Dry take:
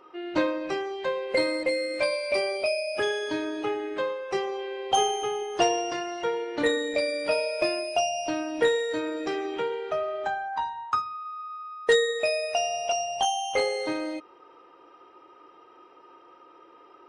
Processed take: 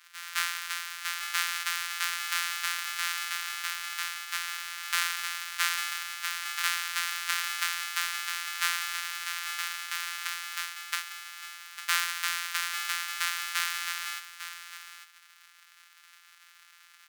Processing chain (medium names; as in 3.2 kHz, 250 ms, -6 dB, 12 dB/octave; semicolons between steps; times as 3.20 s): sorted samples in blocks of 256 samples; steep high-pass 1.3 kHz 36 dB/octave; in parallel at -4 dB: saturation -20.5 dBFS, distortion -12 dB; on the sum: delay 851 ms -11 dB